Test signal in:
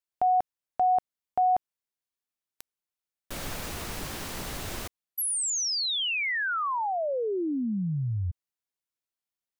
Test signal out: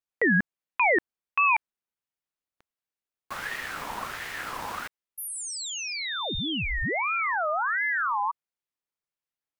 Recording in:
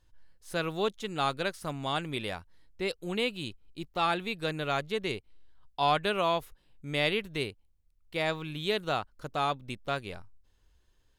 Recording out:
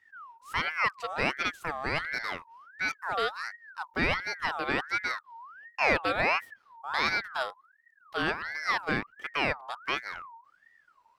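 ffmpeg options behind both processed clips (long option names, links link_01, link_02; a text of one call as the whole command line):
ffmpeg -i in.wav -af "asoftclip=type=hard:threshold=-17dB,highshelf=frequency=2400:gain=-9,aeval=exprs='val(0)*sin(2*PI*1400*n/s+1400*0.35/1.4*sin(2*PI*1.4*n/s))':channel_layout=same,volume=5dB" out.wav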